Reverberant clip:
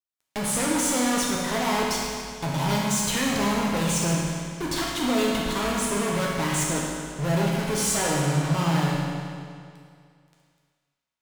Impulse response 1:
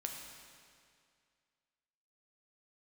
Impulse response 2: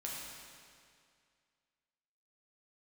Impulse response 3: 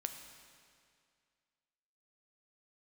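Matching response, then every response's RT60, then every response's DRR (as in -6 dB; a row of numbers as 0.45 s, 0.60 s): 2; 2.2 s, 2.2 s, 2.2 s; 1.5 dB, -4.5 dB, 5.5 dB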